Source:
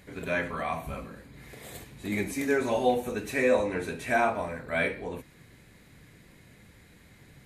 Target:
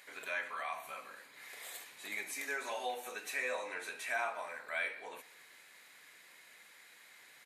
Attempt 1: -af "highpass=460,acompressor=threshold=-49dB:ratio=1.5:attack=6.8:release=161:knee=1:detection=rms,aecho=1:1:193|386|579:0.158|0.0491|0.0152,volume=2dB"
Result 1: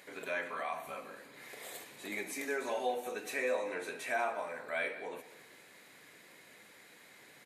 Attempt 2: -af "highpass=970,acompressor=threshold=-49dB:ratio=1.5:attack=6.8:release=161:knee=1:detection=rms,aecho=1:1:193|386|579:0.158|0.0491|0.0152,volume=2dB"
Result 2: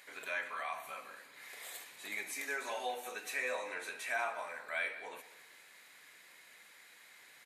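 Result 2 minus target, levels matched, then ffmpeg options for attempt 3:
echo-to-direct +7 dB
-af "highpass=970,acompressor=threshold=-49dB:ratio=1.5:attack=6.8:release=161:knee=1:detection=rms,aecho=1:1:193|386:0.0708|0.0219,volume=2dB"

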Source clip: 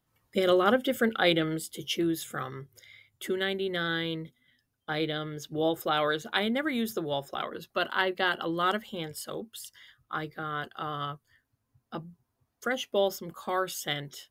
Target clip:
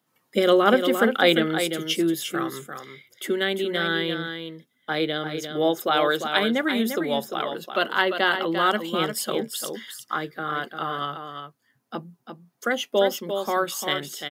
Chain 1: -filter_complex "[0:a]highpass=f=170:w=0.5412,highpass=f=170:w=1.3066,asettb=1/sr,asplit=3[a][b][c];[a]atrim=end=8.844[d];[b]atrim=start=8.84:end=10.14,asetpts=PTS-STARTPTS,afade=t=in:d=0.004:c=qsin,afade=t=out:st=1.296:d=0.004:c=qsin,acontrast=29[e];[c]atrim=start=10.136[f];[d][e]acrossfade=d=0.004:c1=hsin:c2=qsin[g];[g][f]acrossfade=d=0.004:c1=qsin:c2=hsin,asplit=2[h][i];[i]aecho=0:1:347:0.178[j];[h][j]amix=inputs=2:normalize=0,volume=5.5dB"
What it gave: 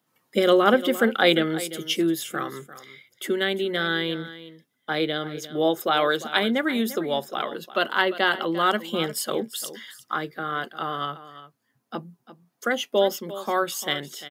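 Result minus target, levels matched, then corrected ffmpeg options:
echo-to-direct -7.5 dB
-filter_complex "[0:a]highpass=f=170:w=0.5412,highpass=f=170:w=1.3066,asettb=1/sr,asplit=3[a][b][c];[a]atrim=end=8.844[d];[b]atrim=start=8.84:end=10.14,asetpts=PTS-STARTPTS,afade=t=in:d=0.004:c=qsin,afade=t=out:st=1.296:d=0.004:c=qsin,acontrast=29[e];[c]atrim=start=10.136[f];[d][e]acrossfade=d=0.004:c1=hsin:c2=qsin[g];[g][f]acrossfade=d=0.004:c1=qsin:c2=hsin,asplit=2[h][i];[i]aecho=0:1:347:0.422[j];[h][j]amix=inputs=2:normalize=0,volume=5.5dB"

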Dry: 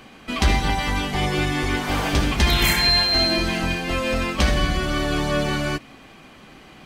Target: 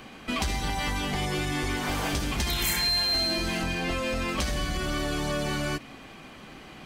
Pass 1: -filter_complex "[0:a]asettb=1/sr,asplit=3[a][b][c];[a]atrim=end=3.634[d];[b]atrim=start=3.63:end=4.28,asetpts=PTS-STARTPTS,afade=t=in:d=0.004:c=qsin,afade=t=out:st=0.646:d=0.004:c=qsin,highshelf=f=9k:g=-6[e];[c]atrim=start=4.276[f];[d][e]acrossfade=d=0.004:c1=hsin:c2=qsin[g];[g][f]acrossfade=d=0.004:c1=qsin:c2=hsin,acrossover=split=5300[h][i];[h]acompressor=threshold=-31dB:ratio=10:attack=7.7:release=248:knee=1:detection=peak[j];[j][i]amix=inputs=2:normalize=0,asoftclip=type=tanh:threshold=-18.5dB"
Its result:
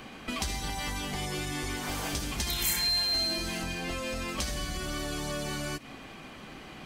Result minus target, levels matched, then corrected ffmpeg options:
compressor: peak gain reduction +6.5 dB
-filter_complex "[0:a]asettb=1/sr,asplit=3[a][b][c];[a]atrim=end=3.634[d];[b]atrim=start=3.63:end=4.28,asetpts=PTS-STARTPTS,afade=t=in:d=0.004:c=qsin,afade=t=out:st=0.646:d=0.004:c=qsin,highshelf=f=9k:g=-6[e];[c]atrim=start=4.276[f];[d][e]acrossfade=d=0.004:c1=hsin:c2=qsin[g];[g][f]acrossfade=d=0.004:c1=qsin:c2=hsin,acrossover=split=5300[h][i];[h]acompressor=threshold=-24dB:ratio=10:attack=7.7:release=248:knee=1:detection=peak[j];[j][i]amix=inputs=2:normalize=0,asoftclip=type=tanh:threshold=-18.5dB"

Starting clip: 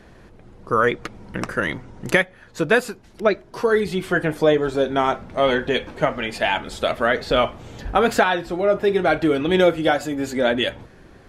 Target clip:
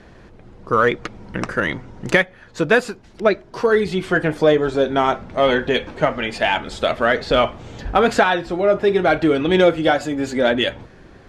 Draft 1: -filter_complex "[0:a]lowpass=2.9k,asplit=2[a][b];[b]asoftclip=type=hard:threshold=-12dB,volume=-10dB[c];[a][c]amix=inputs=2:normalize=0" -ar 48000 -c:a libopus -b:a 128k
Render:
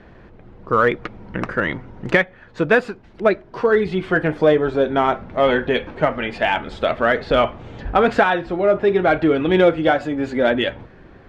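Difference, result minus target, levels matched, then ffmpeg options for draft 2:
8000 Hz band -12.5 dB
-filter_complex "[0:a]lowpass=7.5k,asplit=2[a][b];[b]asoftclip=type=hard:threshold=-12dB,volume=-10dB[c];[a][c]amix=inputs=2:normalize=0" -ar 48000 -c:a libopus -b:a 128k

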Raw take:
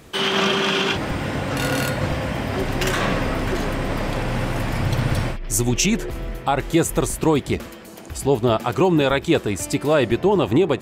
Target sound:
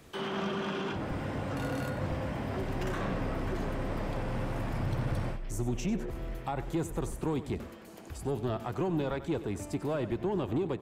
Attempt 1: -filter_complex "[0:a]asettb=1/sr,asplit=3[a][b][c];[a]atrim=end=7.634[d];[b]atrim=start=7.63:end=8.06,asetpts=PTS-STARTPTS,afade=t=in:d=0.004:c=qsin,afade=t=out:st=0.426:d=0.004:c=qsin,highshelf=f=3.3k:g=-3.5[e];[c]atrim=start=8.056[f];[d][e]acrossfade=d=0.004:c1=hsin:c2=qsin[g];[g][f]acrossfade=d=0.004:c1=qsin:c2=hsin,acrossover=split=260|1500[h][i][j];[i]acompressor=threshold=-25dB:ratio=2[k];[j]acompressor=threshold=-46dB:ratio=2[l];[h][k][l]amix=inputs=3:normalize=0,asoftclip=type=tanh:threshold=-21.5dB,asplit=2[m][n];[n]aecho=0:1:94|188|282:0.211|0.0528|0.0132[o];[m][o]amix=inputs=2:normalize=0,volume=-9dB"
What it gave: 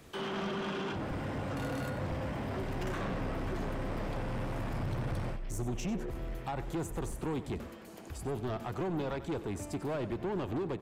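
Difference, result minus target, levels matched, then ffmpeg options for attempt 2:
soft clip: distortion +8 dB
-filter_complex "[0:a]asettb=1/sr,asplit=3[a][b][c];[a]atrim=end=7.634[d];[b]atrim=start=7.63:end=8.06,asetpts=PTS-STARTPTS,afade=t=in:d=0.004:c=qsin,afade=t=out:st=0.426:d=0.004:c=qsin,highshelf=f=3.3k:g=-3.5[e];[c]atrim=start=8.056[f];[d][e]acrossfade=d=0.004:c1=hsin:c2=qsin[g];[g][f]acrossfade=d=0.004:c1=qsin:c2=hsin,acrossover=split=260|1500[h][i][j];[i]acompressor=threshold=-25dB:ratio=2[k];[j]acompressor=threshold=-46dB:ratio=2[l];[h][k][l]amix=inputs=3:normalize=0,asoftclip=type=tanh:threshold=-14.5dB,asplit=2[m][n];[n]aecho=0:1:94|188|282:0.211|0.0528|0.0132[o];[m][o]amix=inputs=2:normalize=0,volume=-9dB"

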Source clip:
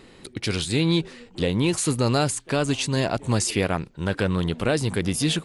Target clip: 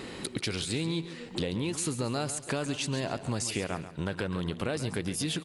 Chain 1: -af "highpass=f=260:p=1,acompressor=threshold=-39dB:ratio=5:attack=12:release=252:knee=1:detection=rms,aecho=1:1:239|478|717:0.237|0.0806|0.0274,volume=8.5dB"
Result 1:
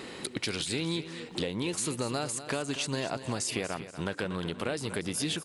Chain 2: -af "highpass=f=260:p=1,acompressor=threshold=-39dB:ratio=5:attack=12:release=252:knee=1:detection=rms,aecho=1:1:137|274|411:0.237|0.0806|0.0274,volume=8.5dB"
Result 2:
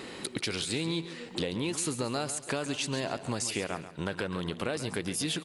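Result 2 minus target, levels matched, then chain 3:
125 Hz band -3.5 dB
-af "highpass=f=81:p=1,acompressor=threshold=-39dB:ratio=5:attack=12:release=252:knee=1:detection=rms,aecho=1:1:137|274|411:0.237|0.0806|0.0274,volume=8.5dB"

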